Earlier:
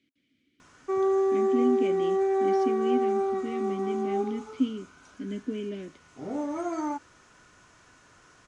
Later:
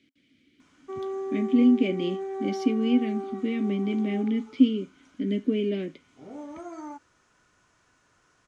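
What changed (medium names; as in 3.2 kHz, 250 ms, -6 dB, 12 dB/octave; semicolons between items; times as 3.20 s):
speech +7.5 dB; background -8.5 dB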